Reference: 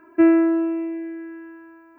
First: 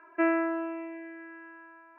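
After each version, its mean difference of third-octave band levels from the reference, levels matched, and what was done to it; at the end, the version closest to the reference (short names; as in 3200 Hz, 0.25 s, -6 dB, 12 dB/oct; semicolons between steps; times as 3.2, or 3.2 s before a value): 3.0 dB: Butterworth band-pass 1400 Hz, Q 0.54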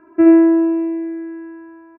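1.5 dB: LPF 1100 Hz 6 dB/oct; on a send: loudspeakers at several distances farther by 25 m -5 dB, 43 m -9 dB; on the sum: gain +3 dB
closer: second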